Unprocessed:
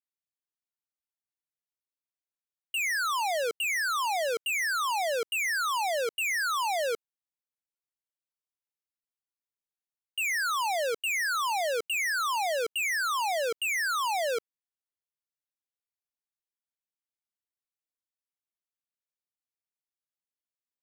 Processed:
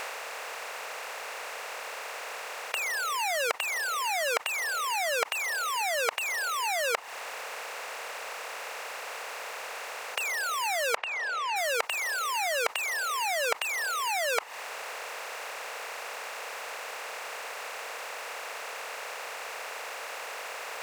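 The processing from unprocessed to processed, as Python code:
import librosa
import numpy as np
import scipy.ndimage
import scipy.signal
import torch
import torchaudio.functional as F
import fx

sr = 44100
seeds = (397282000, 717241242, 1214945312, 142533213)

y = fx.bin_compress(x, sr, power=0.2)
y = fx.dereverb_blind(y, sr, rt60_s=0.64)
y = fx.lowpass(y, sr, hz=fx.line((10.95, 2700.0), (11.55, 4400.0)), slope=12, at=(10.95, 11.55), fade=0.02)
y = y * librosa.db_to_amplitude(-5.0)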